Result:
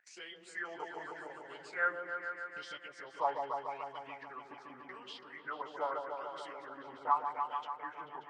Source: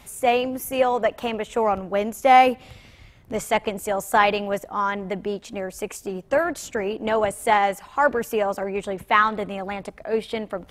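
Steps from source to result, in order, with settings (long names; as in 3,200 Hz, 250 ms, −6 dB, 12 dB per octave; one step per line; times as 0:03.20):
phase-vocoder pitch shift without resampling −11 semitones
noise gate −38 dBFS, range −52 dB
LFO wah 0.64 Hz 660–2,500 Hz, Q 12
upward compression, threshold −46 dBFS
speed change +29%
echo whose low-pass opens from repeat to repeat 146 ms, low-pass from 750 Hz, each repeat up 1 octave, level −3 dB
level +1.5 dB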